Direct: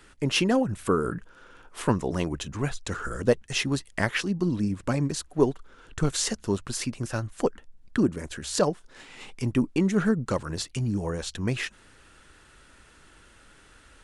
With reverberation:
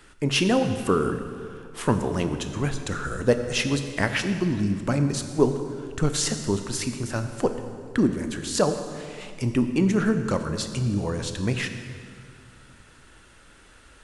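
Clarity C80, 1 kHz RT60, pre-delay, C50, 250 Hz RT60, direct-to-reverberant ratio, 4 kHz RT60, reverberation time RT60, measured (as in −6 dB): 9.5 dB, 2.0 s, 19 ms, 8.5 dB, 2.8 s, 7.5 dB, 1.8 s, 2.2 s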